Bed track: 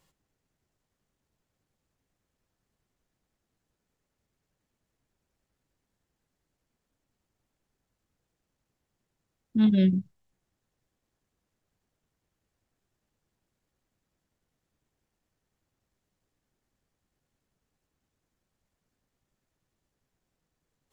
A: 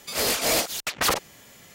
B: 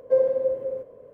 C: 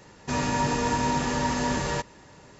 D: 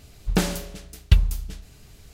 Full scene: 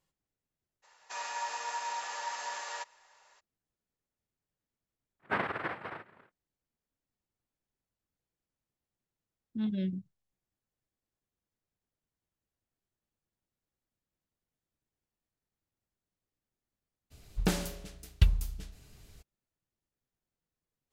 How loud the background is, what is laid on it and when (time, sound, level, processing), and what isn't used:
bed track -11.5 dB
0.82 add C -8.5 dB, fades 0.02 s + HPF 700 Hz 24 dB/oct
5.19 add B -13 dB, fades 0.10 s + noise vocoder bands 3
17.1 add D -7.5 dB, fades 0.02 s
not used: A

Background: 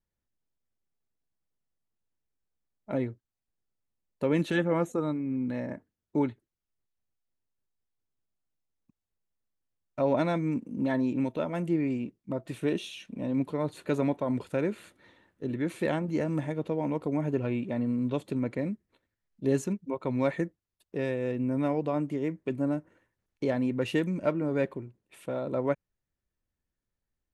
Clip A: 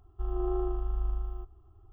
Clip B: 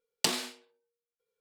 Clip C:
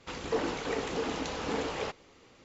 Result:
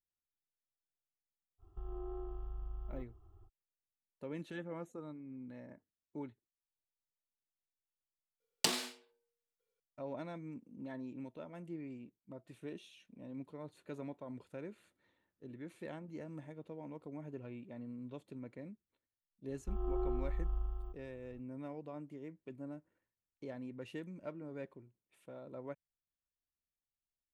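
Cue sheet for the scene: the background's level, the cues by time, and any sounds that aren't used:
background -17.5 dB
1.58 add A -4 dB, fades 0.05 s + compressor, threshold -35 dBFS
8.4 add B -4 dB
19.48 add A -6 dB
not used: C

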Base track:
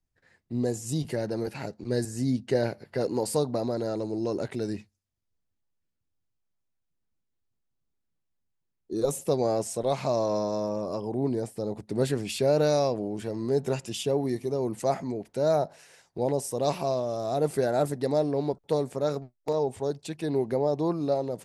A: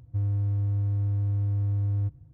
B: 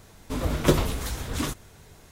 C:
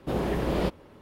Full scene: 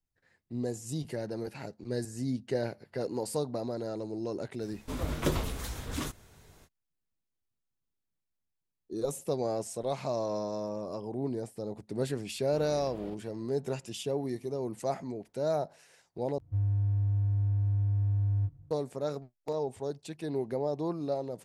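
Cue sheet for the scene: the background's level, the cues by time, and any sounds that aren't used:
base track -6 dB
4.58 add B -6.5 dB, fades 0.05 s + limiter -8 dBFS
12.45 add C -17 dB + limiter -21 dBFS
16.38 replace with A -5.5 dB + doubler 21 ms -4 dB

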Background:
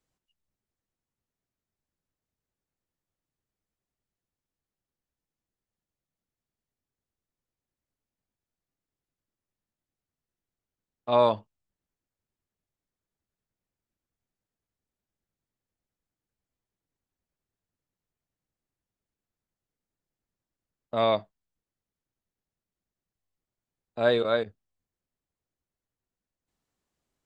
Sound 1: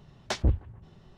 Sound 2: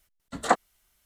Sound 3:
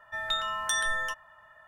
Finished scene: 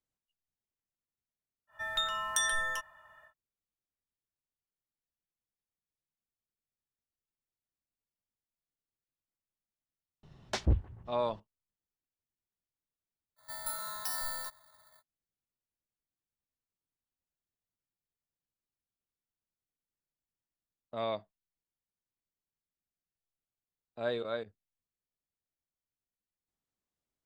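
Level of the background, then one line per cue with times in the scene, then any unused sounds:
background -11 dB
1.67 add 3 -3.5 dB, fades 0.10 s + high shelf 7300 Hz +7.5 dB
10.23 add 1 -3.5 dB
13.36 add 3 -8 dB, fades 0.05 s + FFT order left unsorted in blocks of 16 samples
not used: 2

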